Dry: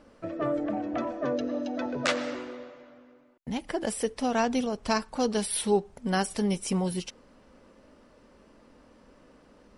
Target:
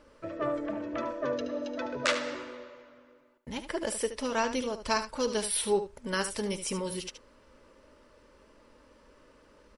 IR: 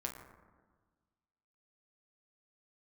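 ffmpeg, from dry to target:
-af "asuperstop=centerf=740:order=4:qfactor=5.1,equalizer=frequency=190:width=1.1:gain=-9,aecho=1:1:74:0.299"

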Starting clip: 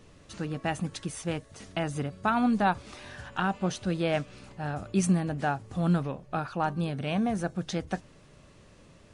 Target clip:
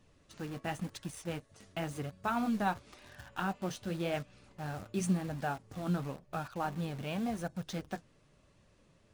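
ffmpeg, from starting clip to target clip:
ffmpeg -i in.wav -filter_complex "[0:a]asplit=2[link_01][link_02];[link_02]acrusher=bits=5:mix=0:aa=0.000001,volume=-4.5dB[link_03];[link_01][link_03]amix=inputs=2:normalize=0,flanger=delay=1.1:depth=8.3:regen=-51:speed=0.93:shape=sinusoidal,volume=-7dB" out.wav

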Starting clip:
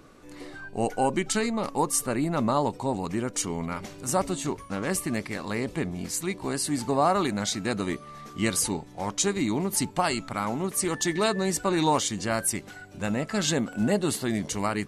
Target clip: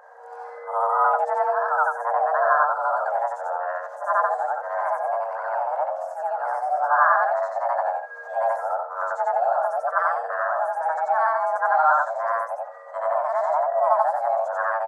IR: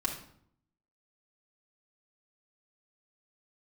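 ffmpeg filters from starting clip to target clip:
-filter_complex "[0:a]afftfilt=real='re':imag='-im':win_size=8192:overlap=0.75,acrossover=split=110|1500[link_01][link_02][link_03];[link_03]acompressor=threshold=-52dB:ratio=5[link_04];[link_01][link_02][link_04]amix=inputs=3:normalize=0,bandreject=frequency=690:width=20,afreqshift=460,aresample=32000,aresample=44100,firequalizer=gain_entry='entry(120,0);entry(170,7);entry(1600,9);entry(2400,-18);entry(6200,-9);entry(9000,-13)':delay=0.05:min_phase=1,volume=2dB"

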